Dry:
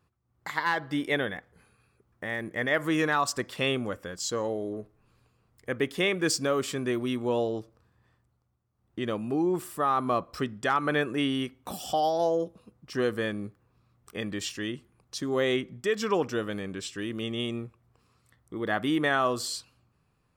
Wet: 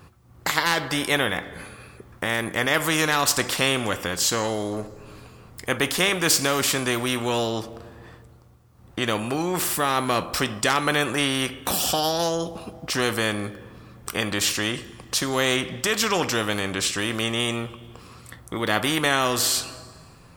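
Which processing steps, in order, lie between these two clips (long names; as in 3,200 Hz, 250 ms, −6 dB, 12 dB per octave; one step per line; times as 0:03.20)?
coupled-rooms reverb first 0.24 s, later 1.5 s, from −21 dB, DRR 12 dB
every bin compressed towards the loudest bin 2 to 1
level +7.5 dB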